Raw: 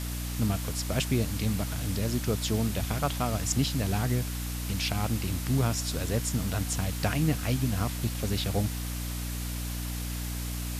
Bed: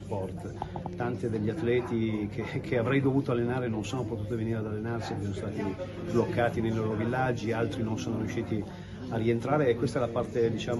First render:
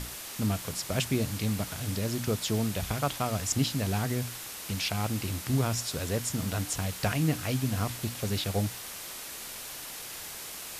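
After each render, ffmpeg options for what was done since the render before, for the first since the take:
-af "bandreject=f=60:t=h:w=6,bandreject=f=120:t=h:w=6,bandreject=f=180:t=h:w=6,bandreject=f=240:t=h:w=6,bandreject=f=300:t=h:w=6"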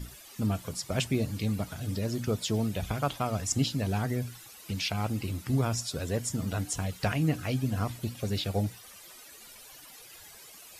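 -af "afftdn=nr=14:nf=-41"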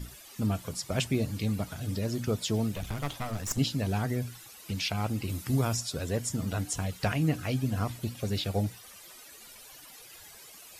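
-filter_complex "[0:a]asettb=1/sr,asplit=3[s0][s1][s2];[s0]atrim=end=2.724[s3];[s1]atrim=start=2.72:end=3.58,asetpts=PTS-STARTPTS,afade=t=in:d=0.004:c=qsin,afade=t=out:st=0.856:d=0.004:c=qsin,aeval=exprs='clip(val(0),-1,0.0126)':c=same[s4];[s2]atrim=start=3.576[s5];[s3][s4]acrossfade=d=0.004:c1=hsin:c2=qsin[s6];[s6][s5]acrossfade=d=0.004:c1=qsin:c2=hsin,asettb=1/sr,asplit=3[s7][s8][s9];[s7]atrim=end=5.294[s10];[s8]atrim=start=5.29:end=5.77,asetpts=PTS-STARTPTS,afade=t=in:d=0.004:c=qsin,afade=t=out:st=0.476:d=0.004:c=qsin,highshelf=f=5400:g=6.5[s11];[s9]atrim=start=5.766[s12];[s10][s11]acrossfade=d=0.004:c1=hsin:c2=qsin[s13];[s13][s12]acrossfade=d=0.004:c1=qsin:c2=hsin"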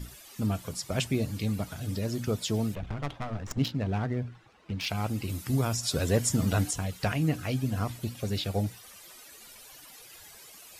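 -filter_complex "[0:a]asplit=3[s0][s1][s2];[s0]afade=t=out:st=2.74:d=0.02[s3];[s1]adynamicsmooth=sensitivity=5:basefreq=1700,afade=t=in:st=2.74:d=0.02,afade=t=out:st=4.85:d=0.02[s4];[s2]afade=t=in:st=4.85:d=0.02[s5];[s3][s4][s5]amix=inputs=3:normalize=0,asettb=1/sr,asplit=3[s6][s7][s8];[s6]atrim=end=5.834[s9];[s7]atrim=start=5.83:end=6.71,asetpts=PTS-STARTPTS,afade=t=in:d=0.004:c=qsin,afade=t=out:st=0.876:d=0.004:c=qsin,acontrast=43[s10];[s8]atrim=start=6.706[s11];[s9][s10]acrossfade=d=0.004:c1=hsin:c2=qsin[s12];[s12][s11]acrossfade=d=0.004:c1=qsin:c2=hsin"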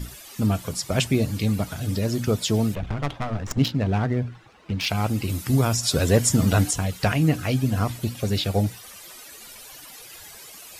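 -af "volume=2.24"

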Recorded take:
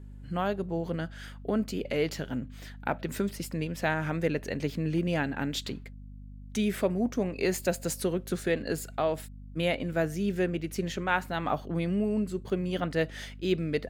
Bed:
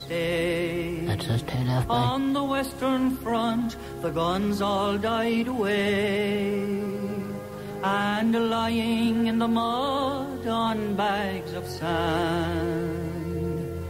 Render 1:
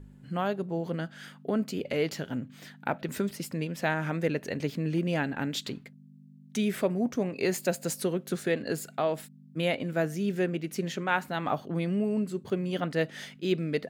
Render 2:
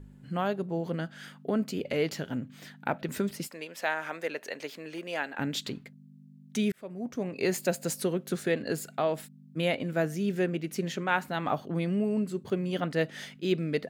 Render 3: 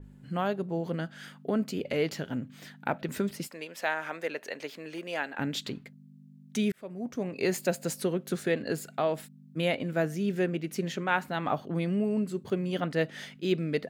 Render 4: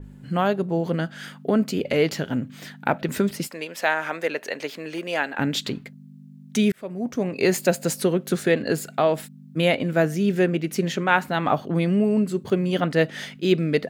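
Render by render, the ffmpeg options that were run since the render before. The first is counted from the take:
-af "bandreject=f=50:t=h:w=4,bandreject=f=100:t=h:w=4"
-filter_complex "[0:a]asettb=1/sr,asplit=3[s0][s1][s2];[s0]atrim=end=3.474[s3];[s1]atrim=start=3.47:end=5.39,asetpts=PTS-STARTPTS,afade=t=in:d=0.004:c=qsin,afade=t=out:st=1.916:d=0.004:c=qsin,highpass=560[s4];[s2]atrim=start=5.386[s5];[s3][s4]acrossfade=d=0.004:c1=hsin:c2=qsin[s6];[s6][s5]acrossfade=d=0.004:c1=qsin:c2=hsin,asplit=2[s7][s8];[s7]atrim=end=6.72,asetpts=PTS-STARTPTS,afade=t=out:st=6.716:d=0.004:c=hsin[s9];[s8]atrim=start=6.72,asetpts=PTS-STARTPTS,afade=t=in:d=0.75[s10];[s9][s10]concat=n=2:v=0:a=1"
-af "adynamicequalizer=threshold=0.00447:dfrequency=4600:dqfactor=0.7:tfrequency=4600:tqfactor=0.7:attack=5:release=100:ratio=0.375:range=2:mode=cutabove:tftype=highshelf"
-af "volume=2.51"

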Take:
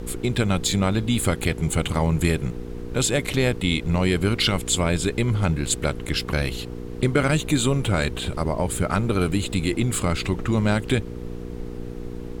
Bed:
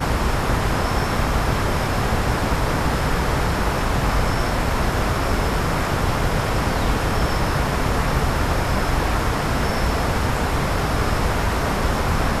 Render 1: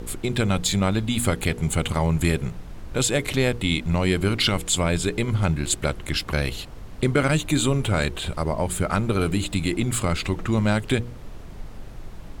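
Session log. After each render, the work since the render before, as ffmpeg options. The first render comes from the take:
-af "bandreject=f=60:t=h:w=4,bandreject=f=120:t=h:w=4,bandreject=f=180:t=h:w=4,bandreject=f=240:t=h:w=4,bandreject=f=300:t=h:w=4,bandreject=f=360:t=h:w=4,bandreject=f=420:t=h:w=4,bandreject=f=480:t=h:w=4"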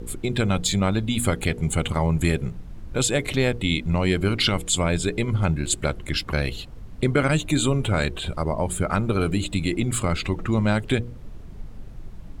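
-af "afftdn=nr=8:nf=-38"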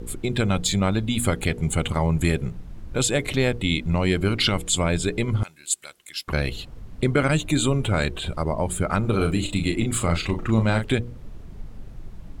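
-filter_complex "[0:a]asettb=1/sr,asplit=3[s0][s1][s2];[s0]atrim=end=5.434[s3];[s1]atrim=start=5.43:end=6.28,asetpts=PTS-STARTPTS,afade=t=in:d=0.004:c=qsin,afade=t=out:st=0.846:d=0.004:c=qsin,aderivative[s4];[s2]atrim=start=6.276[s5];[s3][s4]acrossfade=d=0.004:c1=hsin:c2=qsin[s6];[s6][s5]acrossfade=d=0.004:c1=qsin:c2=hsin,asettb=1/sr,asplit=3[s7][s8][s9];[s7]atrim=end=9.004[s10];[s8]atrim=start=9:end=10.86,asetpts=PTS-STARTPTS,afade=t=in:d=0.004:c=qsin,afade=t=out:st=1.856:d=0.004:c=qsin,asplit=2[s11][s12];[s12]adelay=36,volume=0.447[s13];[s11][s13]amix=inputs=2:normalize=0,atrim=end_sample=82026[s14];[s9]atrim=start=10.856[s15];[s10][s14]acrossfade=d=0.004:c1=hsin:c2=qsin[s16];[s16][s15]acrossfade=d=0.004:c1=qsin:c2=hsin"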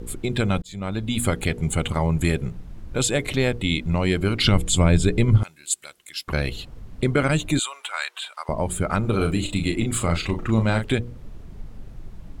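-filter_complex "[0:a]asettb=1/sr,asplit=3[s0][s1][s2];[s0]atrim=end=4.444[s3];[s1]atrim=start=4.44:end=5.38,asetpts=PTS-STARTPTS,afade=t=in:d=0.004:c=qsin,afade=t=out:st=0.936:d=0.004:c=qsin,lowshelf=f=230:g=10[s4];[s2]atrim=start=5.376[s5];[s3][s4]acrossfade=d=0.004:c1=hsin:c2=qsin[s6];[s6][s5]acrossfade=d=0.004:c1=qsin:c2=hsin,asettb=1/sr,asplit=3[s7][s8][s9];[s7]atrim=end=7.594[s10];[s8]atrim=start=7.59:end=8.49,asetpts=PTS-STARTPTS,afade=t=in:d=0.004:c=qsin,afade=t=out:st=0.896:d=0.004:c=qsin,highpass=f=930:w=0.5412,highpass=f=930:w=1.3066[s11];[s9]atrim=start=8.486[s12];[s10][s11]acrossfade=d=0.004:c1=hsin:c2=qsin[s13];[s13][s12]acrossfade=d=0.004:c1=qsin:c2=hsin,asplit=2[s14][s15];[s14]atrim=end=0.62,asetpts=PTS-STARTPTS,afade=t=out:st=0.616:d=0.004:c=hsin[s16];[s15]atrim=start=0.62,asetpts=PTS-STARTPTS,afade=t=in:d=0.54[s17];[s16][s17]concat=n=2:v=0:a=1"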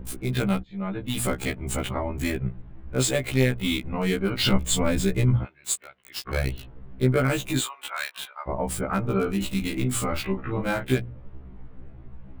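-filter_complex "[0:a]acrossover=split=2800[s0][s1];[s1]acrusher=bits=4:mix=0:aa=0.000001[s2];[s0][s2]amix=inputs=2:normalize=0,afftfilt=real='re*1.73*eq(mod(b,3),0)':imag='im*1.73*eq(mod(b,3),0)':win_size=2048:overlap=0.75"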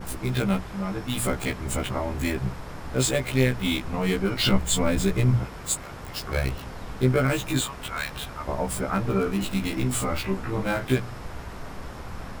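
-filter_complex "[1:a]volume=0.119[s0];[0:a][s0]amix=inputs=2:normalize=0"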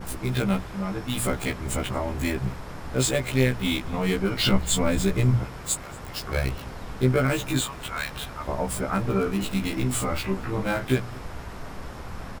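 -af "aecho=1:1:231:0.0631"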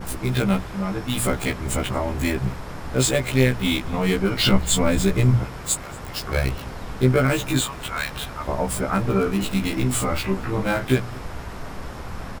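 -af "volume=1.5"

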